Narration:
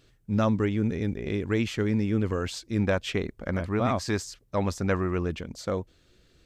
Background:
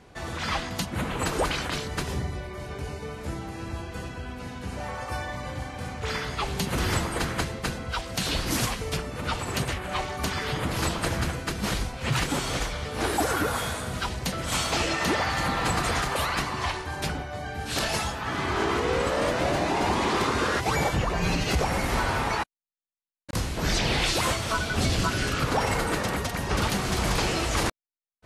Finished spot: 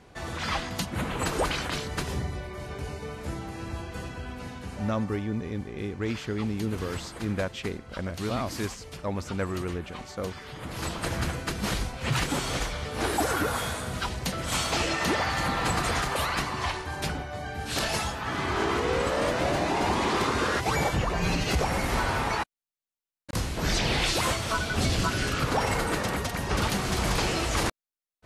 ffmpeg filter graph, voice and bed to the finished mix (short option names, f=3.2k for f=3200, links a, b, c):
-filter_complex "[0:a]adelay=4500,volume=-4.5dB[a];[1:a]volume=10.5dB,afade=t=out:st=4.42:d=0.74:silence=0.266073,afade=t=in:st=10.52:d=0.78:silence=0.266073[b];[a][b]amix=inputs=2:normalize=0"